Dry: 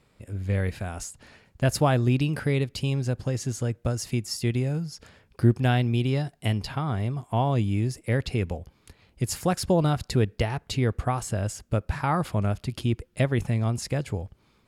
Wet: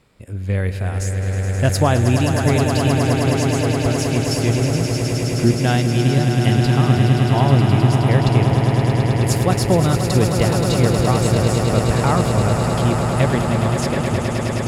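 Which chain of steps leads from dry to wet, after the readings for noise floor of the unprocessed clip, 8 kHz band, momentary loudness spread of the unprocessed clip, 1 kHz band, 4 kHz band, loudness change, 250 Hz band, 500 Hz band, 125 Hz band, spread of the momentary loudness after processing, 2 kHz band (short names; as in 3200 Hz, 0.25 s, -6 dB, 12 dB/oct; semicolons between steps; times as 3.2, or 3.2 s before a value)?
-64 dBFS, +9.5 dB, 9 LU, +9.5 dB, +10.0 dB, +9.5 dB, +10.0 dB, +10.0 dB, +10.0 dB, 6 LU, +9.5 dB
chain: swelling echo 0.105 s, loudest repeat 8, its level -8.5 dB; gain +5 dB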